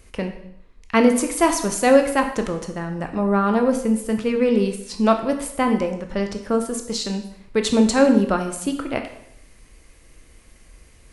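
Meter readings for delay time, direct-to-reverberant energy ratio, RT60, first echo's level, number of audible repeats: none, 5.0 dB, 0.75 s, none, none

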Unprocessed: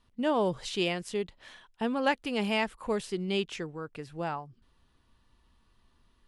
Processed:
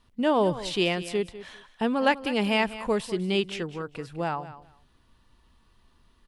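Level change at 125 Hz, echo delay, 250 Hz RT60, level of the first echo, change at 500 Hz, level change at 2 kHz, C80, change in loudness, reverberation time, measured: +4.5 dB, 0.199 s, none, -15.0 dB, +4.5 dB, +4.5 dB, none, +4.5 dB, none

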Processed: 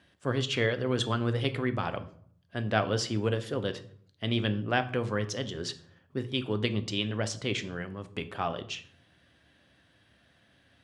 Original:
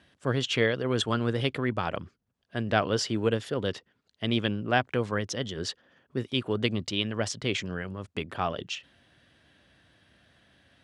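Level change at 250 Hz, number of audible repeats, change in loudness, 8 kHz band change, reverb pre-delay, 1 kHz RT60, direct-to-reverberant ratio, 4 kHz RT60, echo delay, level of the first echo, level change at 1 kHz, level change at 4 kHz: -2.0 dB, none, -1.5 dB, -2.0 dB, 3 ms, 0.55 s, 9.0 dB, 0.40 s, none, none, -2.0 dB, -2.0 dB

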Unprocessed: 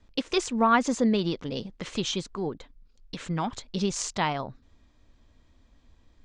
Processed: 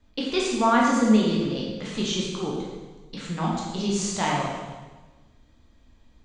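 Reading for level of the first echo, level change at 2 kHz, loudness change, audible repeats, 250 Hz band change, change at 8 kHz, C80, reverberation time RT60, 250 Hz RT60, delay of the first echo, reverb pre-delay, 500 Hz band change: none, +3.0 dB, +3.5 dB, none, +5.0 dB, +2.5 dB, 2.5 dB, 1.3 s, 1.4 s, none, 13 ms, +3.0 dB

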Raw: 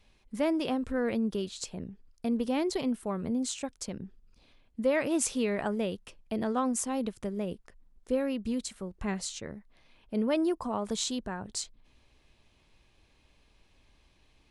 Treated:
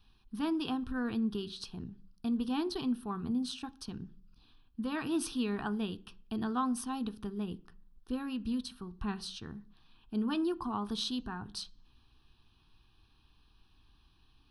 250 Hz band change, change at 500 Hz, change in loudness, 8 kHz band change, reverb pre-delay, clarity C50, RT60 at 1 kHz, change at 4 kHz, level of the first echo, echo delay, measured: -2.5 dB, -10.5 dB, -4.0 dB, -11.5 dB, 3 ms, 22.5 dB, 0.40 s, -1.0 dB, none, none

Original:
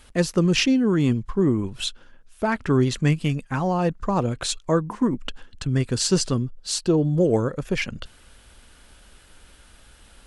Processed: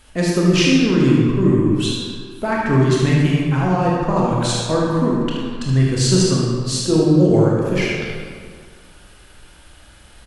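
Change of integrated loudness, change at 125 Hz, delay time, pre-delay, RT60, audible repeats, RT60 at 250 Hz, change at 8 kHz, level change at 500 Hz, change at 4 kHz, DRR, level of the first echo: +6.0 dB, +7.0 dB, 75 ms, 20 ms, 2.0 s, 1, 1.9 s, +4.0 dB, +5.5 dB, +5.0 dB, -4.5 dB, -5.5 dB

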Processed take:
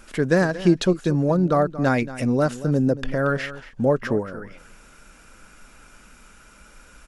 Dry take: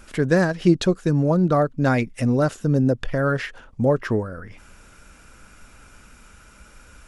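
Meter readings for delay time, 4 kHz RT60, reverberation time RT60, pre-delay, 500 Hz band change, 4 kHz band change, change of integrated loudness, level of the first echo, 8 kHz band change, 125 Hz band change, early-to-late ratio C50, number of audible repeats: 0.229 s, none, none, none, 0.0 dB, 0.0 dB, -1.0 dB, -15.5 dB, 0.0 dB, -2.5 dB, none, 1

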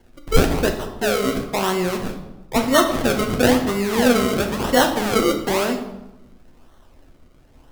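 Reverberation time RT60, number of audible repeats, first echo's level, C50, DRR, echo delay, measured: 0.95 s, none, none, 8.0 dB, 3.0 dB, none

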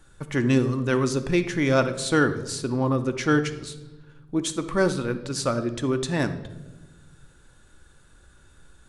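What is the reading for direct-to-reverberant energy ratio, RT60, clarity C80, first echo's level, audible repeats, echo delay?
8.0 dB, 1.2 s, 14.5 dB, none, none, none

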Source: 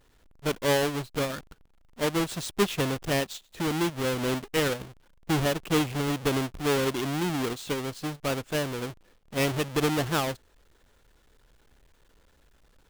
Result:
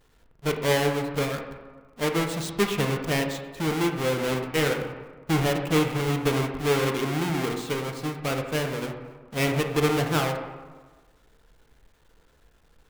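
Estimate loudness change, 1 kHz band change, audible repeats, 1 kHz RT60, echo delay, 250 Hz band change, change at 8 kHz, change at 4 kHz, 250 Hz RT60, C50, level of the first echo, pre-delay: +2.0 dB, +2.5 dB, none, 1.4 s, none, +2.0 dB, 0.0 dB, +1.0 dB, 1.3 s, 6.0 dB, none, 3 ms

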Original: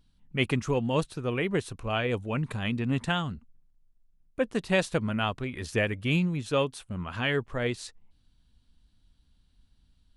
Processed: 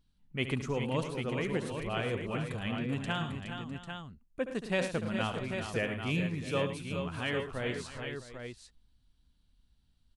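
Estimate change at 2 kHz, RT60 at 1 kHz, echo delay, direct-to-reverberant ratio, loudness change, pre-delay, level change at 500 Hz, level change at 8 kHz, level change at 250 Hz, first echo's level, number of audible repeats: -4.5 dB, none, 71 ms, none, -5.5 dB, none, -4.5 dB, -4.5 dB, -4.5 dB, -11.0 dB, 6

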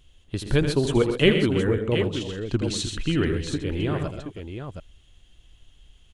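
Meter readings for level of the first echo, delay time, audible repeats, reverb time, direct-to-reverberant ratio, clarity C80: -10.0 dB, 81 ms, 4, none, none, none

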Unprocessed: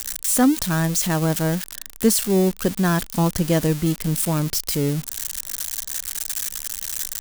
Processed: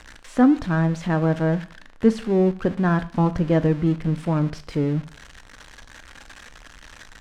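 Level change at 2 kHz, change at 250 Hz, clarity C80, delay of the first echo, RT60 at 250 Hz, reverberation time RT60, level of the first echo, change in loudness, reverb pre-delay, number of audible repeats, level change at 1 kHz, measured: -1.5 dB, +0.5 dB, 21.0 dB, none, 0.50 s, 0.45 s, none, -0.5 dB, 3 ms, none, 0.0 dB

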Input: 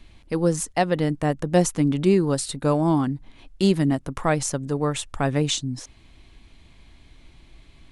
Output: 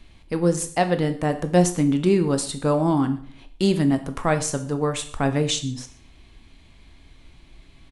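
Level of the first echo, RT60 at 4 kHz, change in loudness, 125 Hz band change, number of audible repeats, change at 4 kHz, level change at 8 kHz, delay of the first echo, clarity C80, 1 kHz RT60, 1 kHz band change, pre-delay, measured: -21.5 dB, 0.45 s, +0.5 dB, 0.0 dB, 1, +0.5 dB, +0.5 dB, 0.121 s, 15.5 dB, 0.50 s, +1.0 dB, 7 ms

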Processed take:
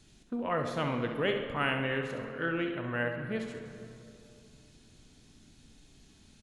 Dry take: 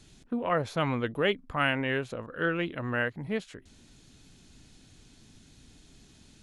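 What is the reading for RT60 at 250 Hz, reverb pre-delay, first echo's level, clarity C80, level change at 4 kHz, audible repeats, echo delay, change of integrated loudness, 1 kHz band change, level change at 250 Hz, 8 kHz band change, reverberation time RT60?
3.2 s, 15 ms, -9.0 dB, 7.5 dB, -3.0 dB, 2, 67 ms, -3.0 dB, -3.0 dB, -2.0 dB, -3.5 dB, 2.7 s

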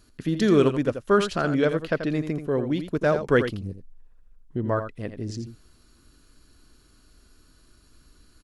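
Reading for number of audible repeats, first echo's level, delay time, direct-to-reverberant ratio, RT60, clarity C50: 1, -9.5 dB, 84 ms, none, none, none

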